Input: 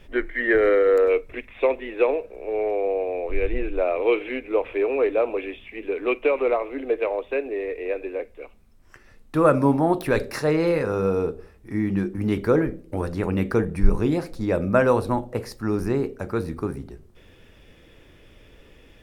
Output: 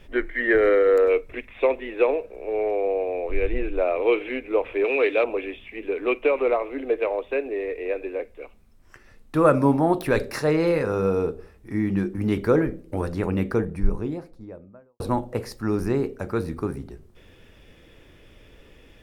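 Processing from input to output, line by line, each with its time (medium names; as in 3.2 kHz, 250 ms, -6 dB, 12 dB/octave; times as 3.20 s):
4.84–5.24 s: frequency weighting D
13.03–15.00 s: studio fade out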